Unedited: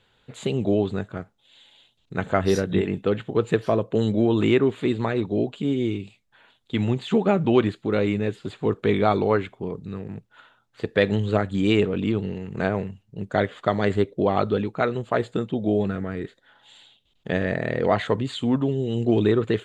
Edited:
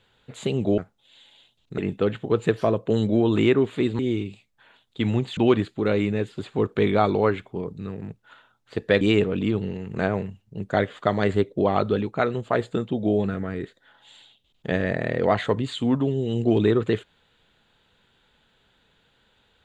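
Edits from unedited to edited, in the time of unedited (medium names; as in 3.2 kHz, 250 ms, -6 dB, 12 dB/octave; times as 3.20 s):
0.78–1.18 s: delete
2.18–2.83 s: delete
5.04–5.73 s: delete
7.11–7.44 s: delete
11.08–11.62 s: delete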